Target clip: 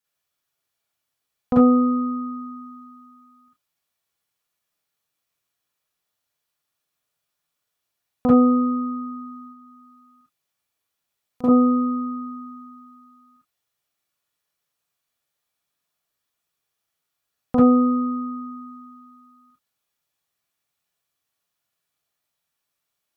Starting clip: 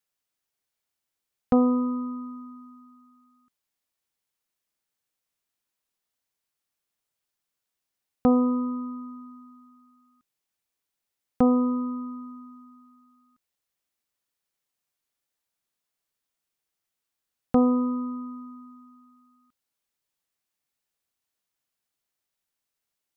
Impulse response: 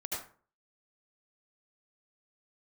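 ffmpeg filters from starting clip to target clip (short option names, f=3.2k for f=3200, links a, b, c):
-filter_complex "[0:a]asettb=1/sr,asplit=3[a][b][c];[a]atrim=end=9.474[d];[b]atrim=start=9.47:end=11.44,asetpts=PTS-STARTPTS,afade=t=in:d=0.004:c=qsin,afade=t=out:st=1.966:d=0.004:c=qsin,acompressor=threshold=-52dB:ratio=2.5[e];[c]atrim=start=11.436[f];[d][e]acrossfade=d=0.004:c1=hsin:c2=qsin[g];[g][f]acrossfade=d=0.004:c1=qsin:c2=hsin[h];[1:a]atrim=start_sample=2205,afade=t=out:st=0.21:d=0.01,atrim=end_sample=9702,asetrate=83790,aresample=44100[i];[h][i]afir=irnorm=-1:irlink=0,volume=8.5dB"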